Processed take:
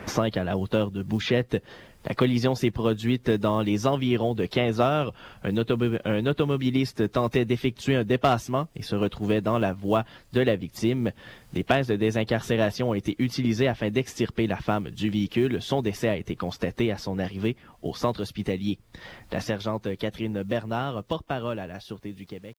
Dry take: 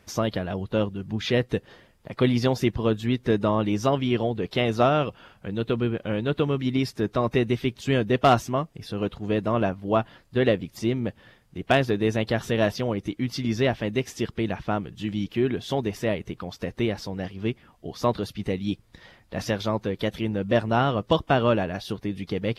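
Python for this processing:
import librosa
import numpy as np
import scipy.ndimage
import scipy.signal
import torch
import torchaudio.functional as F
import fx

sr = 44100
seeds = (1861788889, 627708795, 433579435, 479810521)

y = fx.fade_out_tail(x, sr, length_s=6.99)
y = fx.quant_companded(y, sr, bits=8)
y = fx.band_squash(y, sr, depth_pct=70)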